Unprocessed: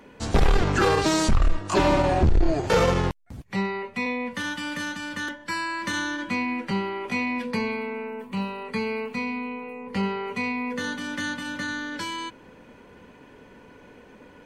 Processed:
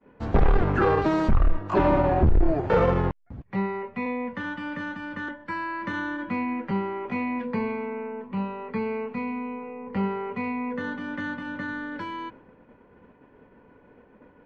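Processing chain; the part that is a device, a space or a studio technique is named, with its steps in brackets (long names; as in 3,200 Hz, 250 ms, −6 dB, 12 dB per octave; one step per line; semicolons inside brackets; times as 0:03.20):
hearing-loss simulation (low-pass filter 1,600 Hz 12 dB per octave; downward expander −44 dBFS)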